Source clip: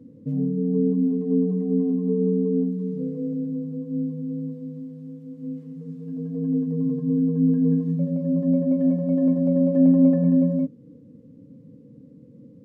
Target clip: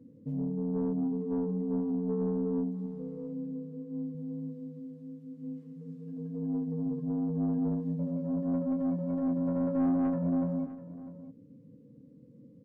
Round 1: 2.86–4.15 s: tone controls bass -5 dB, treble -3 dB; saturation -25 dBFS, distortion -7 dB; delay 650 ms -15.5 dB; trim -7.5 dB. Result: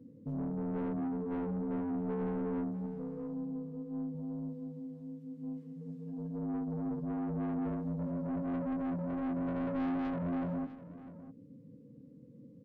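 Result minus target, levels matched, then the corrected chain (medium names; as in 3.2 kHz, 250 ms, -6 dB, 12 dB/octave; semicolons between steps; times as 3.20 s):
saturation: distortion +7 dB
2.86–4.15 s: tone controls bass -5 dB, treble -3 dB; saturation -16.5 dBFS, distortion -14 dB; delay 650 ms -15.5 dB; trim -7.5 dB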